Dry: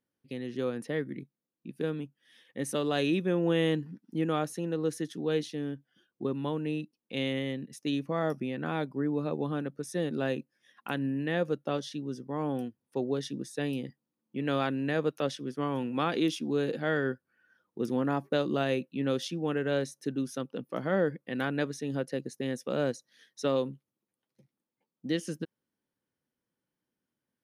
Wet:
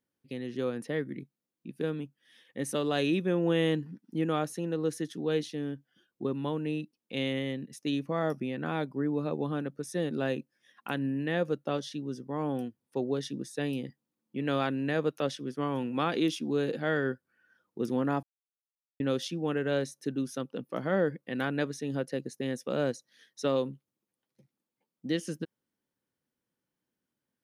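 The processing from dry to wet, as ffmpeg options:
-filter_complex "[0:a]asplit=3[a][b][c];[a]atrim=end=18.23,asetpts=PTS-STARTPTS,afade=t=out:st=18.226:d=0.004:c=hsin[d];[b]atrim=start=18.23:end=19,asetpts=PTS-STARTPTS,volume=0[e];[c]atrim=start=19,asetpts=PTS-STARTPTS,afade=t=in:d=0.004:c=hsin[f];[d][e][f]concat=n=3:v=0:a=1"

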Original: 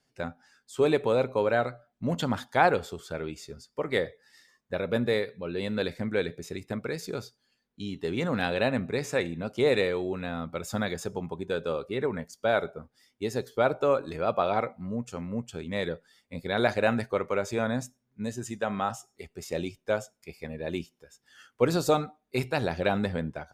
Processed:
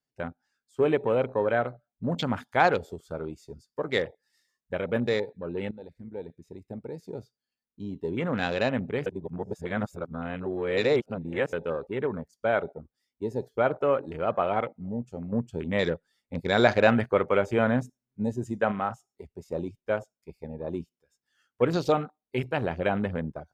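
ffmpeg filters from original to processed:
-filter_complex "[0:a]asettb=1/sr,asplit=3[a][b][c];[a]atrim=end=2.144[d];[b]atrim=start=2.14:end=5.09,asetpts=PTS-STARTPTS,afade=t=in:d=0.004:c=qsin,afade=t=out:st=2.946:d=0.004:c=qsin,highshelf=f=4.2k:g=7.5[e];[c]atrim=start=5.086[f];[d][e]acrossfade=d=0.004:c1=hsin:c2=qsin[g];[g][f]acrossfade=d=0.004:c1=qsin:c2=hsin,asettb=1/sr,asplit=3[h][i][j];[h]atrim=end=15.324[k];[i]atrim=start=15.32:end=18.72,asetpts=PTS-STARTPTS,afade=t=in:d=0.004:c=qsin,afade=t=out:st=3.396:d=0.004:c=qsin,acontrast=22[l];[j]atrim=start=18.716[m];[k][l]acrossfade=d=0.004:c1=hsin:c2=qsin[n];[n][m]acrossfade=d=0.004:c1=qsin:c2=hsin,asplit=4[o][p][q][r];[o]atrim=end=5.71,asetpts=PTS-STARTPTS,afade=t=out:st=5.706:d=0.004:c=hsin:silence=0.158489[s];[p]atrim=start=5.71:end=9.062,asetpts=PTS-STARTPTS,afade=t=in:d=2.18:silence=0.158489[t];[q]atrim=start=9.058:end=11.532,asetpts=PTS-STARTPTS,areverse[u];[r]atrim=start=11.528[v];[s][t]concat=n=2:v=0:a=1[w];[w][u]acrossfade=d=0.004:c1=hsin:c2=hsin[x];[x][v]acrossfade=d=0.004:c1=hsin:c2=hsin,afwtdn=0.0126"

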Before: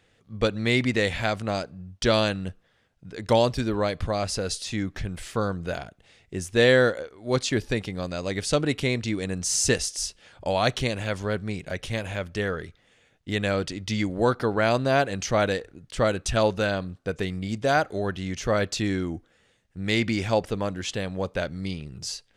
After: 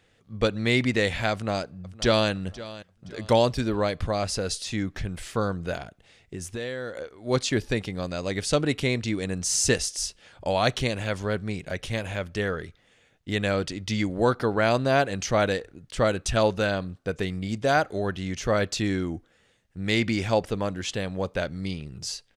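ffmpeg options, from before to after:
-filter_complex "[0:a]asplit=2[a][b];[b]afade=t=in:st=1.32:d=0.01,afade=t=out:st=2.3:d=0.01,aecho=0:1:520|1040|1560:0.141254|0.0494388|0.0173036[c];[a][c]amix=inputs=2:normalize=0,asettb=1/sr,asplit=3[d][e][f];[d]atrim=end=5.774[g];[e]atrim=start=5.77:end=7.02,asetpts=PTS-STARTPTS,afade=t=in:d=0.004:c=qsin,afade=t=out:st=1.246:d=0.004:c=qsin,acompressor=threshold=-30dB:ratio=6:attack=3.2:release=140:knee=1:detection=peak[h];[f]atrim=start=7.016[i];[g][h]acrossfade=d=0.004:c1=hsin:c2=qsin[j];[j][i]acrossfade=d=0.004:c1=qsin:c2=hsin"

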